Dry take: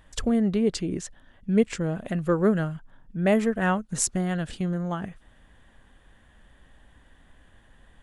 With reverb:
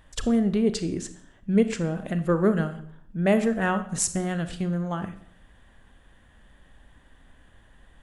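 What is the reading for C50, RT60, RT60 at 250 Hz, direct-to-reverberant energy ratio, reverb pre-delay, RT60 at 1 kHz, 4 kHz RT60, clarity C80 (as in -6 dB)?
12.5 dB, 0.65 s, 0.65 s, 10.5 dB, 30 ms, 0.60 s, 0.55 s, 15.5 dB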